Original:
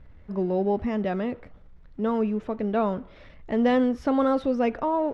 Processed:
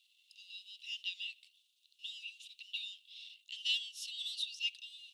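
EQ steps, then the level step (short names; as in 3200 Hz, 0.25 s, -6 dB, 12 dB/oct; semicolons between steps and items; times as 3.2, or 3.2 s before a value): rippled Chebyshev high-pass 2700 Hz, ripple 6 dB; +13.5 dB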